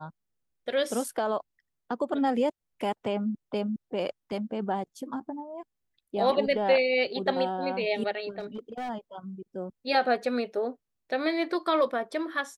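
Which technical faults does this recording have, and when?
8.39–8.90 s: clipped -31.5 dBFS

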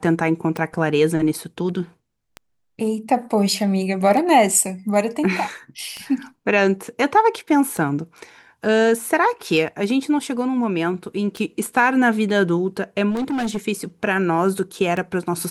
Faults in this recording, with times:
tick 33 1/3 rpm
13.10–13.58 s: clipped -20 dBFS

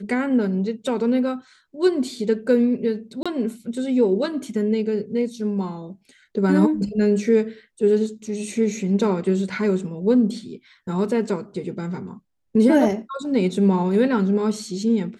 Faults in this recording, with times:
3.23–3.26 s: dropout 26 ms

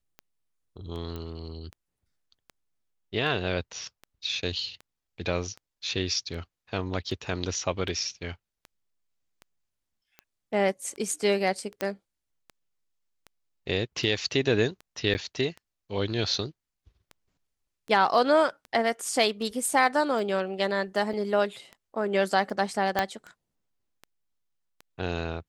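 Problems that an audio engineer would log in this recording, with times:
tick 78 rpm -28 dBFS
1.16 s: pop -24 dBFS
11.81 s: pop -14 dBFS
15.14–15.15 s: dropout 9 ms
21.13 s: dropout 3.1 ms
22.99 s: pop -10 dBFS

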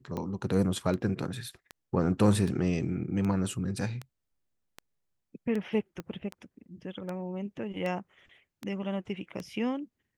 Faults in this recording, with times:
tick 78 rpm -23 dBFS
6.00 s: pop -25 dBFS

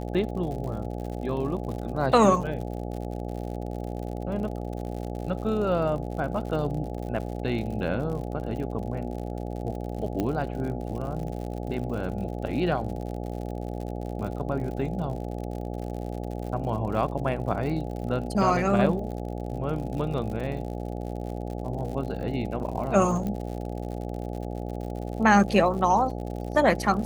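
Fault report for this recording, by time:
buzz 60 Hz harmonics 14 -33 dBFS
crackle 77 per s -35 dBFS
6.98 s: dropout 2.1 ms
10.20 s: pop -15 dBFS
23.27 s: pop -20 dBFS

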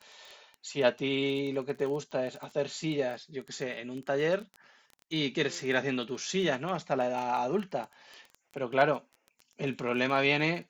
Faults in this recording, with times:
crackle 11 per s -36 dBFS
2.43 s: pop

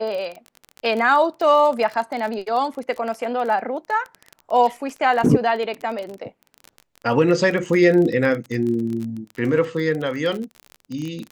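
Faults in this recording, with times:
crackle 26 per s -26 dBFS

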